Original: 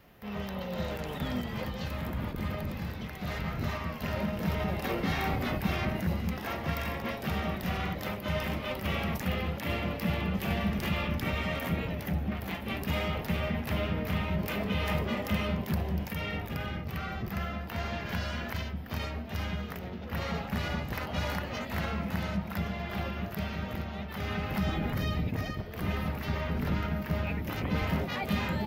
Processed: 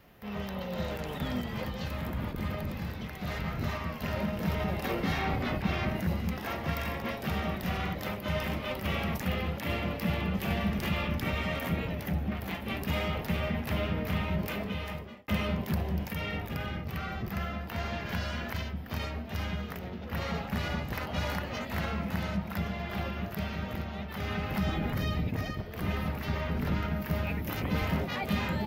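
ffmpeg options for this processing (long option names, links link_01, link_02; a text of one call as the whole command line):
ffmpeg -i in.wav -filter_complex "[0:a]asettb=1/sr,asplit=3[link_01][link_02][link_03];[link_01]atrim=end=5.194[link_04];[link_02]atrim=start=5.19:end=5.91,asetpts=PTS-STARTPTS,afade=type=in:duration=0.004:curve=qsin,afade=type=out:start_time=0.716:duration=0.004:curve=qsin,acrossover=split=5800[link_05][link_06];[link_06]acompressor=threshold=-57dB:ratio=4:attack=1:release=60[link_07];[link_05][link_07]amix=inputs=2:normalize=0[link_08];[link_03]atrim=start=5.906[link_09];[link_04][link_08]acrossfade=duration=0.004:curve1=hsin:curve2=qsin[link_10];[link_10][link_09]acrossfade=duration=0.004:curve1=qsin:curve2=hsin,asettb=1/sr,asplit=3[link_11][link_12][link_13];[link_11]atrim=end=27.004[link_14];[link_12]atrim=start=27:end=27.88,asetpts=PTS-STARTPTS,afade=type=in:duration=0.004:curve=qsin,afade=type=out:start_time=0.876:duration=0.004:curve=qsin,highshelf=frequency=8900:gain=8[link_15];[link_13]atrim=start=27.876[link_16];[link_14][link_15]acrossfade=duration=0.004:curve1=hsin:curve2=qsin[link_17];[link_17][link_16]acrossfade=duration=0.004:curve1=qsin:curve2=hsin,asplit=2[link_18][link_19];[link_18]atrim=end=15.28,asetpts=PTS-STARTPTS,afade=type=out:start_time=14.38:duration=0.9[link_20];[link_19]atrim=start=15.28,asetpts=PTS-STARTPTS,afade=type=in:duration=0.004:curve=hsin[link_21];[link_20][link_21]concat=n=2:v=0:a=1" out.wav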